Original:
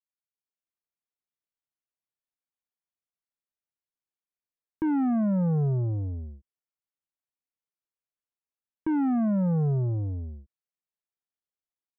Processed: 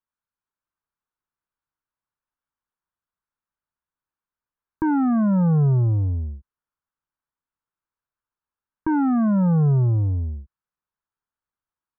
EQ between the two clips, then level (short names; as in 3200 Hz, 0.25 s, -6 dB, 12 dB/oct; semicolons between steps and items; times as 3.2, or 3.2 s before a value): air absorption 390 m; low shelf 130 Hz +9 dB; band shelf 1200 Hz +9.5 dB 1.1 oct; +3.5 dB